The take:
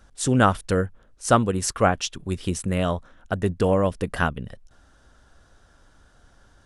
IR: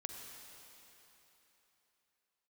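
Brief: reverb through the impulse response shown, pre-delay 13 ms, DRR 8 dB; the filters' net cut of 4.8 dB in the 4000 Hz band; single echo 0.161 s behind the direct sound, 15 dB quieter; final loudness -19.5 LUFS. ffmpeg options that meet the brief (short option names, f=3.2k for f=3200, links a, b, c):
-filter_complex "[0:a]equalizer=f=4k:t=o:g=-7,aecho=1:1:161:0.178,asplit=2[a][b];[1:a]atrim=start_sample=2205,adelay=13[c];[b][c]afir=irnorm=-1:irlink=0,volume=-6dB[d];[a][d]amix=inputs=2:normalize=0,volume=4dB"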